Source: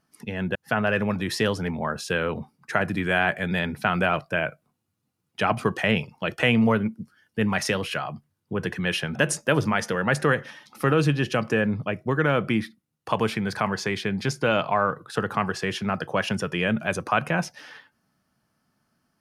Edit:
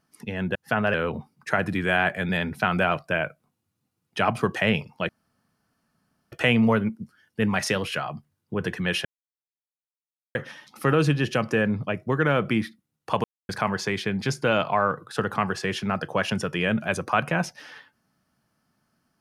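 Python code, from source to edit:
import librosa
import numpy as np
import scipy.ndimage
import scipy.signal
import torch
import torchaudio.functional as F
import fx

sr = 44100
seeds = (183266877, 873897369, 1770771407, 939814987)

y = fx.edit(x, sr, fx.cut(start_s=0.94, length_s=1.22),
    fx.insert_room_tone(at_s=6.31, length_s=1.23),
    fx.silence(start_s=9.04, length_s=1.3),
    fx.silence(start_s=13.23, length_s=0.25), tone=tone)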